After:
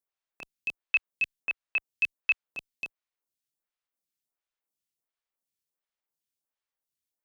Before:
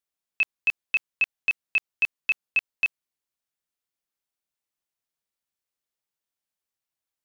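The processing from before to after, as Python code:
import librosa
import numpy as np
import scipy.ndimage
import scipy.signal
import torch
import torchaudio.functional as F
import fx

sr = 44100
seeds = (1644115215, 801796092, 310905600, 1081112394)

y = fx.stagger_phaser(x, sr, hz=1.4)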